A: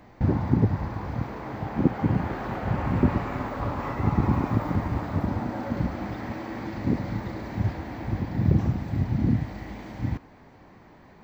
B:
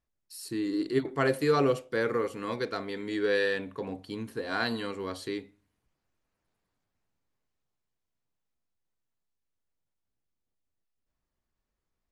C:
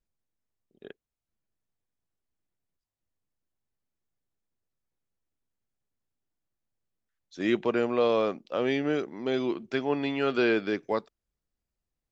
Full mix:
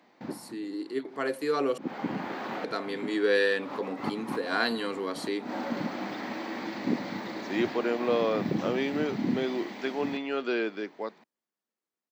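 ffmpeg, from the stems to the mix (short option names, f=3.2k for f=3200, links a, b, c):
-filter_complex "[0:a]equalizer=f=3.8k:t=o:w=1.6:g=8,volume=-9.5dB[a];[1:a]volume=-5.5dB,asplit=3[b][c][d];[b]atrim=end=1.78,asetpts=PTS-STARTPTS,afade=t=out:st=1.776:d=0.004:c=hsin[e];[c]atrim=start=1.78:end=2.64,asetpts=PTS-STARTPTS,volume=0[f];[d]atrim=start=2.64,asetpts=PTS-STARTPTS,afade=t=in:d=0.004:c=hsin[g];[e][f][g]concat=n=3:v=0:a=1,asplit=2[h][i];[2:a]adelay=100,volume=-10.5dB[j];[i]apad=whole_len=495597[k];[a][k]sidechaincompress=threshold=-54dB:ratio=5:attack=16:release=110[l];[l][h][j]amix=inputs=3:normalize=0,dynaudnorm=f=330:g=13:m=8.5dB,highpass=f=210:w=0.5412,highpass=f=210:w=1.3066"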